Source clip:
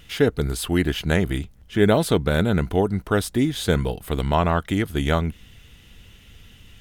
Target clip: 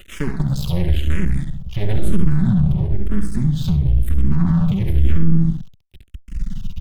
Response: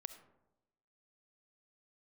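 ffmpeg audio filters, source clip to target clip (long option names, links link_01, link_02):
-filter_complex "[0:a]aecho=1:1:67|134|201|268:0.473|0.132|0.0371|0.0104,acrossover=split=180[link_01][link_02];[link_02]acompressor=threshold=-60dB:ratio=1.5[link_03];[link_01][link_03]amix=inputs=2:normalize=0,asettb=1/sr,asplit=3[link_04][link_05][link_06];[link_04]atrim=end=1.044[link_07];[link_05]atrim=start=1.04:end=1.83,asetpts=PTS-STARTPTS,afade=type=in:duration=0.004:curve=qsin,afade=type=out:start_time=0.786:duration=0.004:curve=qsin,equalizer=frequency=230:width=0.82:gain=-10[link_08];[link_06]atrim=start=1.826[link_09];[link_07][link_08]acrossfade=duration=0.004:curve1=hsin:curve2=qsin[link_10];[link_10][link_09]acrossfade=duration=0.004:curve1=qsin:curve2=hsin,asettb=1/sr,asplit=3[link_11][link_12][link_13];[link_11]atrim=end=2.714[link_14];[link_12]atrim=start=2.71:end=4.3,asetpts=PTS-STARTPTS,afade=type=in:duration=0.004:curve=qsin,afade=type=out:start_time=1.586:duration=0.004:curve=qsin,acompressor=threshold=-32dB:ratio=3[link_15];[link_13]atrim=start=4.296[link_16];[link_14][link_15]acrossfade=duration=0.004:curve1=hsin:curve2=qsin[link_17];[link_17][link_16]acrossfade=duration=0.004:curve1=qsin:curve2=hsin,aecho=1:1:5.3:0.81[link_18];[1:a]atrim=start_sample=2205[link_19];[link_18][link_19]afir=irnorm=-1:irlink=0,aeval=exprs='max(val(0),0)':channel_layout=same,asubboost=boost=9.5:cutoff=180,alimiter=level_in=16.5dB:limit=-1dB:release=50:level=0:latency=1,asplit=2[link_20][link_21];[link_21]afreqshift=-0.99[link_22];[link_20][link_22]amix=inputs=2:normalize=1,volume=-1dB"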